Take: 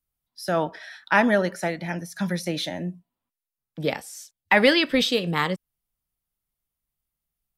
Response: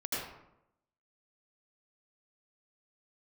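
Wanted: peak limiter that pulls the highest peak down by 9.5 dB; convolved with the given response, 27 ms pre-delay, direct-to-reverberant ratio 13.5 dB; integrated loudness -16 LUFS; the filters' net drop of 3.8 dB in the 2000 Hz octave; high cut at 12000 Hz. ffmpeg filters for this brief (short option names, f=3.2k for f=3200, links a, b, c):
-filter_complex "[0:a]lowpass=12k,equalizer=f=2k:t=o:g=-4.5,alimiter=limit=-16.5dB:level=0:latency=1,asplit=2[a][b];[1:a]atrim=start_sample=2205,adelay=27[c];[b][c]afir=irnorm=-1:irlink=0,volume=-18.5dB[d];[a][d]amix=inputs=2:normalize=0,volume=12.5dB"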